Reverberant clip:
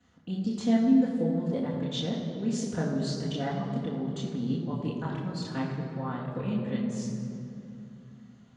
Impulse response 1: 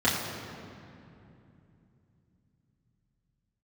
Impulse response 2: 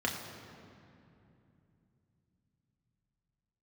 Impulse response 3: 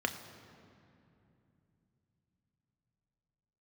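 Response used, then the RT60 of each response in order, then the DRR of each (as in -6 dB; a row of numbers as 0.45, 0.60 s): 1; 2.8, 2.8, 2.8 s; -9.5, -1.5, 5.5 dB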